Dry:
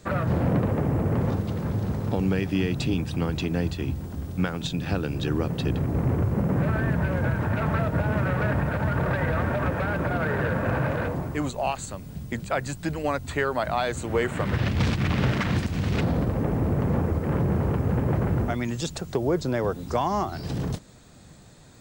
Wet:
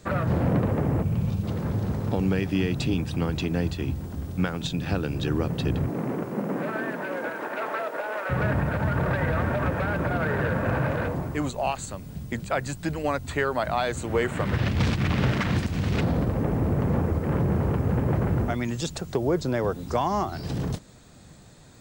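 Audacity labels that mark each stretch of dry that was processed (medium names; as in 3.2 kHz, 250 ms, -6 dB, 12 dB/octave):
1.030000	1.430000	time-frequency box 230–2200 Hz -11 dB
5.880000	8.290000	high-pass 160 Hz -> 470 Hz 24 dB/octave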